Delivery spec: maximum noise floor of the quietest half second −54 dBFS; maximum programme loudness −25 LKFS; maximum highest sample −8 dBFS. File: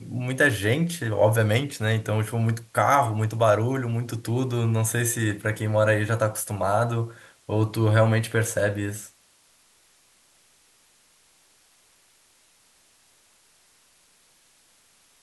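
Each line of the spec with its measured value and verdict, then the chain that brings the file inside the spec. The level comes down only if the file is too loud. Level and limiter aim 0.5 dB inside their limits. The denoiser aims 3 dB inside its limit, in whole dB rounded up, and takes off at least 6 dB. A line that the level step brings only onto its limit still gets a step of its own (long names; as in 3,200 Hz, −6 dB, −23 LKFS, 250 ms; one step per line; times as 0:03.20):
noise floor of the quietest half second −61 dBFS: in spec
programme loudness −24.0 LKFS: out of spec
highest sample −6.5 dBFS: out of spec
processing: level −1.5 dB
brickwall limiter −8.5 dBFS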